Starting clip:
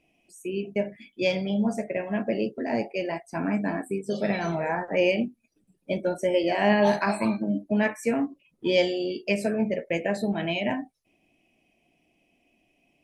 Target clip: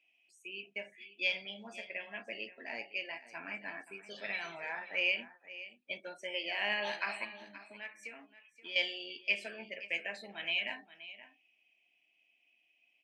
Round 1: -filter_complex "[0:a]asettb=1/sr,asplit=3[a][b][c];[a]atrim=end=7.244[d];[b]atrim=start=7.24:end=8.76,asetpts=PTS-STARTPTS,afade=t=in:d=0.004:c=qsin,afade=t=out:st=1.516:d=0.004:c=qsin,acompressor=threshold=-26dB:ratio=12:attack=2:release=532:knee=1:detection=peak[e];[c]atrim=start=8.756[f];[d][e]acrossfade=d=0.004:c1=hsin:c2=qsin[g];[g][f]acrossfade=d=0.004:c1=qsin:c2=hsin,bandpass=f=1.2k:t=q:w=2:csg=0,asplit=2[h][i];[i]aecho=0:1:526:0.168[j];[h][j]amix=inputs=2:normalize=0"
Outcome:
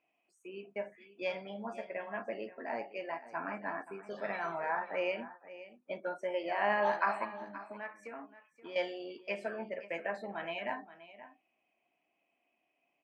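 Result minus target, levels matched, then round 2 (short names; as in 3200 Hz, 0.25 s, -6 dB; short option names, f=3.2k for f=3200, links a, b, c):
1000 Hz band +11.0 dB
-filter_complex "[0:a]asettb=1/sr,asplit=3[a][b][c];[a]atrim=end=7.244[d];[b]atrim=start=7.24:end=8.76,asetpts=PTS-STARTPTS,afade=t=in:d=0.004:c=qsin,afade=t=out:st=1.516:d=0.004:c=qsin,acompressor=threshold=-26dB:ratio=12:attack=2:release=532:knee=1:detection=peak[e];[c]atrim=start=8.756[f];[d][e]acrossfade=d=0.004:c1=hsin:c2=qsin[g];[g][f]acrossfade=d=0.004:c1=qsin:c2=hsin,bandpass=f=2.7k:t=q:w=2:csg=0,asplit=2[h][i];[i]aecho=0:1:526:0.168[j];[h][j]amix=inputs=2:normalize=0"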